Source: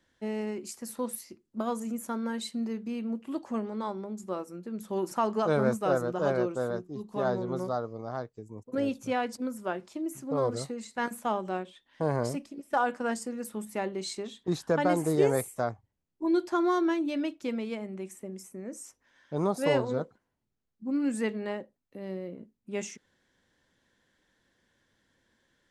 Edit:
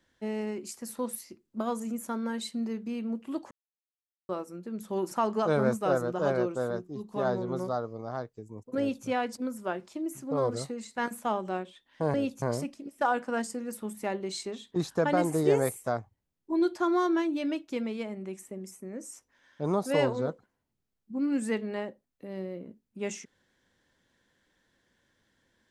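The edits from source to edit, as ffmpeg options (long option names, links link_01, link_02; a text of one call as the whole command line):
ffmpeg -i in.wav -filter_complex "[0:a]asplit=5[link_01][link_02][link_03][link_04][link_05];[link_01]atrim=end=3.51,asetpts=PTS-STARTPTS,afade=type=out:start_time=3.506:duration=0.004:curve=hsin[link_06];[link_02]atrim=start=3.51:end=4.29,asetpts=PTS-STARTPTS,volume=0[link_07];[link_03]atrim=start=4.29:end=12.142,asetpts=PTS-STARTPTS,afade=type=in:duration=0.004:curve=hsin[link_08];[link_04]atrim=start=8.778:end=9.062[link_09];[link_05]atrim=start=12.138[link_10];[link_06][link_07][link_08]concat=n=3:v=0:a=1[link_11];[link_11][link_09]acrossfade=duration=0.004:curve1=hsin:curve2=hsin[link_12];[link_12][link_10]acrossfade=duration=0.004:curve1=hsin:curve2=hsin" out.wav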